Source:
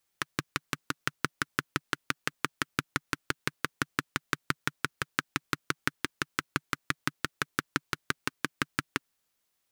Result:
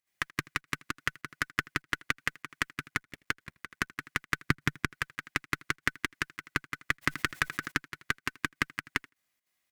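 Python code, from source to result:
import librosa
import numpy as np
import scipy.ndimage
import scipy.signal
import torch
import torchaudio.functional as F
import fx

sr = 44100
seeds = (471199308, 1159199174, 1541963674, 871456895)

y = fx.cycle_switch(x, sr, every=2, mode='muted', at=(2.87, 3.97), fade=0.02)
y = fx.peak_eq(y, sr, hz=2000.0, db=9.0, octaves=0.67)
y = fx.notch(y, sr, hz=1500.0, q=29.0)
y = fx.notch_comb(y, sr, f0_hz=450.0)
y = fx.echo_feedback(y, sr, ms=81, feedback_pct=27, wet_db=-23)
y = fx.volume_shaper(y, sr, bpm=99, per_beat=2, depth_db=-13, release_ms=68.0, shape='slow start')
y = fx.low_shelf(y, sr, hz=360.0, db=11.5, at=(4.48, 4.93))
y = fx.cheby_harmonics(y, sr, harmonics=(4,), levels_db=(-21,), full_scale_db=-5.5)
y = fx.env_flatten(y, sr, amount_pct=50, at=(7.01, 7.7), fade=0.02)
y = y * 10.0 ** (-1.5 / 20.0)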